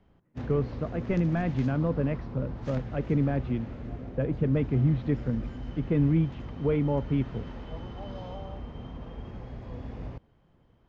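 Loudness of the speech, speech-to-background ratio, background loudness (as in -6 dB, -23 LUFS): -29.0 LUFS, 11.0 dB, -40.0 LUFS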